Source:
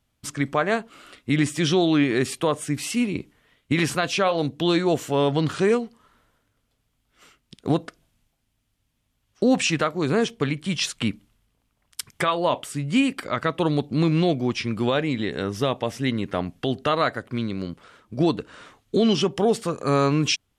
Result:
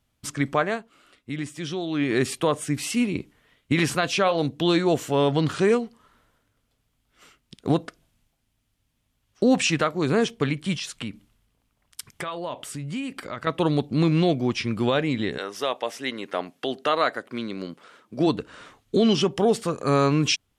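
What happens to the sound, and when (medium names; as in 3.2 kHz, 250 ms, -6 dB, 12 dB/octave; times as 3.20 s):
0.61–2.13 s: dip -10 dB, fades 0.31 s quadratic
10.77–13.47 s: compression 2.5:1, threshold -32 dBFS
15.37–18.26 s: high-pass 560 Hz -> 190 Hz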